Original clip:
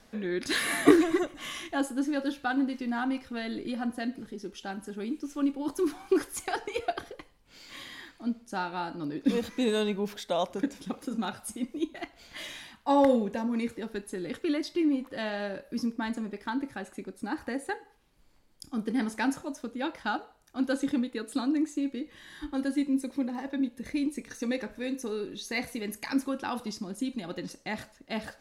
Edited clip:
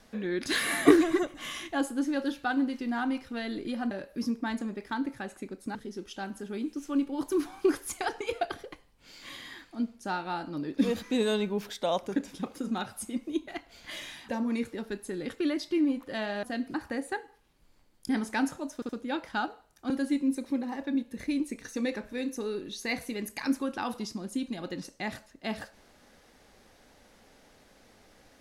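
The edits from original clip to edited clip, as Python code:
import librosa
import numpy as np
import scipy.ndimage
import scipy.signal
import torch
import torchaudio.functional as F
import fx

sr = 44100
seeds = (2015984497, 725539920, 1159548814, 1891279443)

y = fx.edit(x, sr, fx.swap(start_s=3.91, length_s=0.31, other_s=15.47, other_length_s=1.84),
    fx.cut(start_s=12.76, length_s=0.57),
    fx.cut(start_s=18.66, length_s=0.28),
    fx.stutter(start_s=19.6, slice_s=0.07, count=3),
    fx.cut(start_s=20.61, length_s=1.95), tone=tone)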